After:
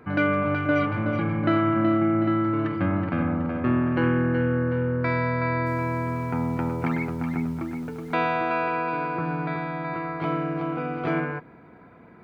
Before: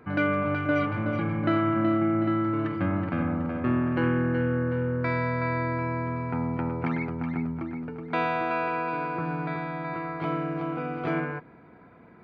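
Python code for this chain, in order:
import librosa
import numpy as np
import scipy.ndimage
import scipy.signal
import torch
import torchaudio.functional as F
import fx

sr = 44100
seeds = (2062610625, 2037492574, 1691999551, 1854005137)

y = fx.dmg_noise_colour(x, sr, seeds[0], colour='pink', level_db=-58.0, at=(5.65, 8.14), fade=0.02)
y = y * librosa.db_to_amplitude(2.5)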